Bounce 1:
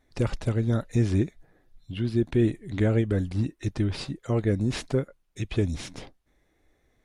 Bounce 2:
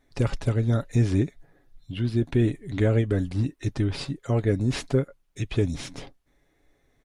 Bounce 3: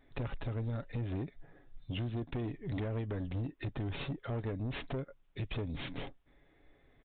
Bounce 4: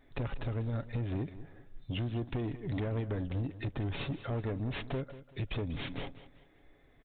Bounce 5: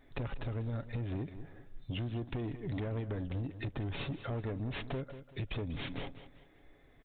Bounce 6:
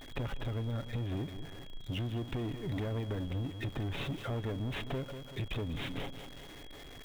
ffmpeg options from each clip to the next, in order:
-af "aecho=1:1:7.2:0.33,volume=1.12"
-af "acompressor=threshold=0.0355:ratio=12,aresample=8000,asoftclip=type=tanh:threshold=0.0224,aresample=44100,volume=1.12"
-af "aecho=1:1:192|384|576:0.178|0.0587|0.0194,volume=1.26"
-af "acompressor=threshold=0.0126:ratio=2,volume=1.12"
-af "aeval=exprs='val(0)+0.5*0.00531*sgn(val(0))':c=same,aeval=exprs='val(0)+0.00178*sin(2*PI*3300*n/s)':c=same"

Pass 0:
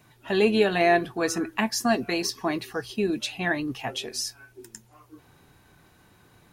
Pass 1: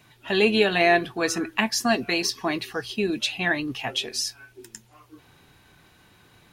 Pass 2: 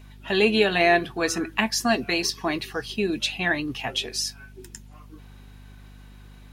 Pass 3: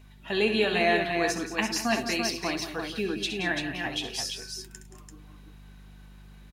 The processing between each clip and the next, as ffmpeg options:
-af "equalizer=f=3100:w=0.82:g=6.5"
-af "aeval=exprs='val(0)+0.00562*(sin(2*PI*50*n/s)+sin(2*PI*2*50*n/s)/2+sin(2*PI*3*50*n/s)/3+sin(2*PI*4*50*n/s)/4+sin(2*PI*5*50*n/s)/5)':c=same"
-af "aecho=1:1:66|105|175|205|339:0.335|0.112|0.251|0.188|0.531,volume=0.531"

